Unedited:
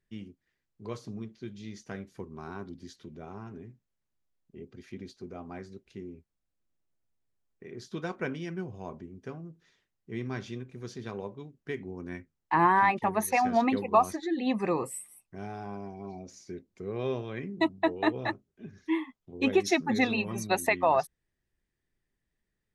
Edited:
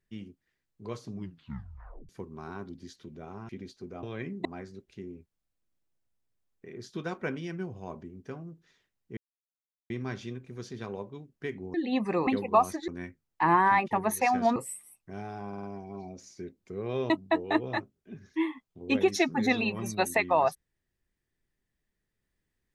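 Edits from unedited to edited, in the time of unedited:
1.13 tape stop 0.96 s
3.49–4.89 cut
10.15 insert silence 0.73 s
11.99–13.67 swap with 14.28–14.81
15.73 stutter 0.05 s, 4 plays
17.2–17.62 move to 5.43

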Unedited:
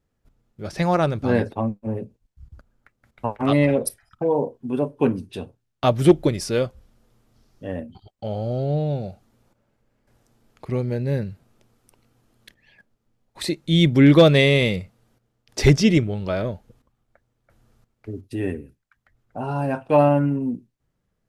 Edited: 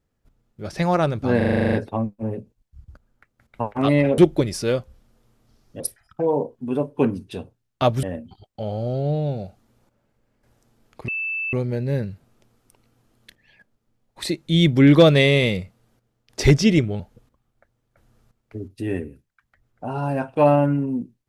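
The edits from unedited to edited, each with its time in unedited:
1.37 stutter 0.04 s, 10 plays
6.05–7.67 move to 3.82
10.72 add tone 2640 Hz -23.5 dBFS 0.45 s
16.19–16.53 cut

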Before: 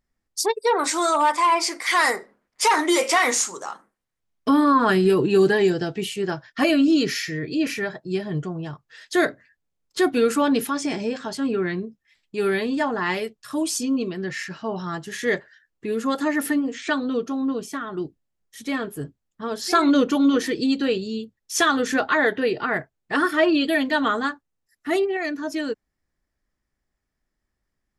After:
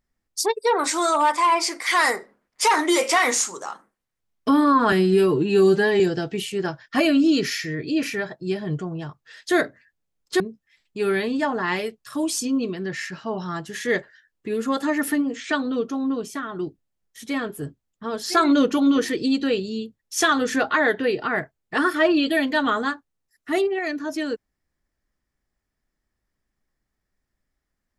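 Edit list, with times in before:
4.92–5.64 stretch 1.5×
10.04–11.78 cut

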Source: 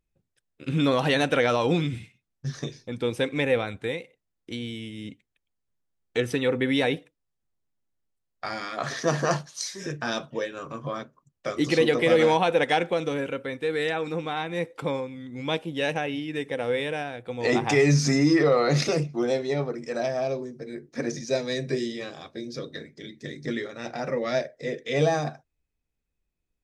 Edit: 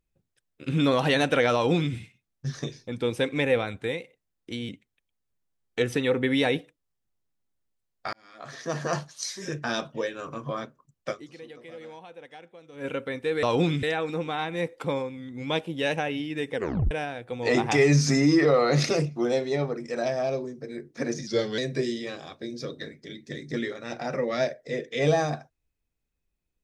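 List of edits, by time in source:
1.54–1.94 copy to 13.81
4.69–5.07 cut
8.51–9.74 fade in
11.48–13.24 dip -23.5 dB, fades 0.48 s exponential
16.53 tape stop 0.36 s
21.25–21.52 speed 87%

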